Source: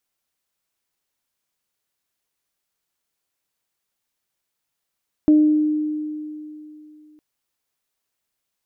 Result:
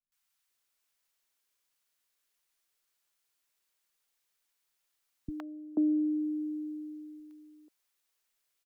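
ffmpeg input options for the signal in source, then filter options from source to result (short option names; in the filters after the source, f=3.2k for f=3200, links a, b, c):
-f lavfi -i "aevalsrc='0.355*pow(10,-3*t/2.92)*sin(2*PI*304*t)+0.0447*pow(10,-3*t/0.68)*sin(2*PI*608*t)':d=1.91:s=44100"
-filter_complex "[0:a]equalizer=f=110:w=0.34:g=-9.5,acrossover=split=110|280[a][b][c];[c]acompressor=threshold=-38dB:ratio=6[d];[a][b][d]amix=inputs=3:normalize=0,acrossover=split=210|740[e][f][g];[g]adelay=120[h];[f]adelay=490[i];[e][i][h]amix=inputs=3:normalize=0"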